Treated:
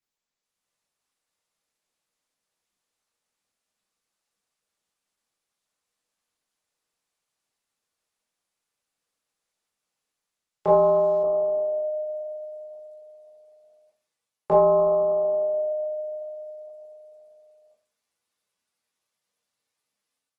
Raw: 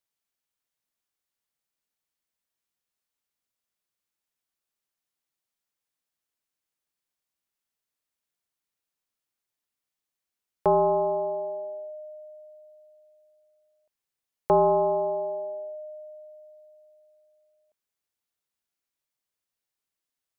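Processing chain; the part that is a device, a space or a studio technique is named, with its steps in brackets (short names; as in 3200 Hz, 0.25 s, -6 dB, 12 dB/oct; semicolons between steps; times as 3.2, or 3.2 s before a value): far-field microphone of a smart speaker (reverb RT60 0.35 s, pre-delay 13 ms, DRR -5 dB; HPF 100 Hz 6 dB/oct; AGC gain up to 10 dB; gain -8 dB; Opus 16 kbps 48000 Hz)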